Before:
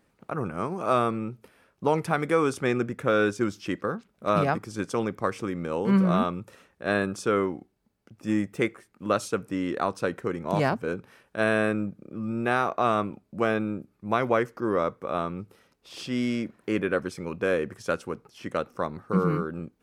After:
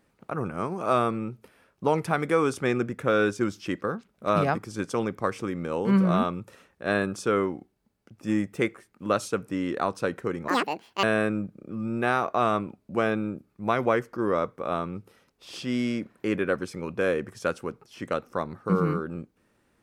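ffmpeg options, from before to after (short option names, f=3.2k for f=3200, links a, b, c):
-filter_complex "[0:a]asplit=3[a][b][c];[a]atrim=end=10.484[d];[b]atrim=start=10.48:end=11.47,asetpts=PTS-STARTPTS,asetrate=78939,aresample=44100[e];[c]atrim=start=11.466[f];[d][e]acrossfade=d=0.004:c1=hsin:c2=hsin[g];[g][f]acrossfade=d=0.004:c1=hsin:c2=hsin"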